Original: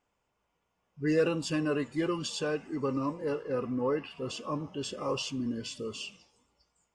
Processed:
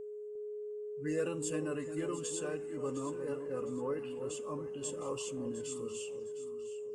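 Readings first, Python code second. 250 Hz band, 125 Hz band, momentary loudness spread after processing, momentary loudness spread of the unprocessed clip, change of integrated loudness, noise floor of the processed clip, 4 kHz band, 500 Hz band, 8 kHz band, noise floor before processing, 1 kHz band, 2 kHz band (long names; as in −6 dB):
−7.5 dB, −7.5 dB, 7 LU, 9 LU, −6.0 dB, −44 dBFS, −11.5 dB, −3.5 dB, +2.0 dB, −80 dBFS, −8.5 dB, −9.0 dB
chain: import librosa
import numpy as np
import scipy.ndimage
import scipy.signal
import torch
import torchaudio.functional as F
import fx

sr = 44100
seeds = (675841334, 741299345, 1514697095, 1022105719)

y = fx.high_shelf_res(x, sr, hz=6300.0, db=8.5, q=3.0)
y = y + 10.0 ** (-33.0 / 20.0) * np.sin(2.0 * np.pi * 420.0 * np.arange(len(y)) / sr)
y = fx.echo_alternate(y, sr, ms=354, hz=900.0, feedback_pct=59, wet_db=-8.0)
y = F.gain(torch.from_numpy(y), -8.5).numpy()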